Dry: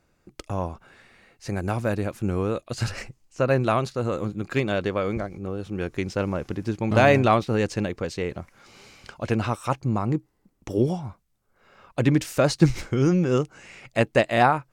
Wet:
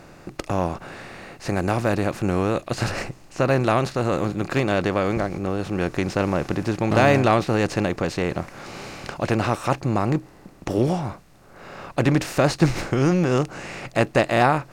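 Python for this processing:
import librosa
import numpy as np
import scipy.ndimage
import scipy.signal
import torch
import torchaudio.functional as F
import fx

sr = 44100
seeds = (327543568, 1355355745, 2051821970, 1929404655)

y = fx.bin_compress(x, sr, power=0.6)
y = y * 10.0 ** (-2.0 / 20.0)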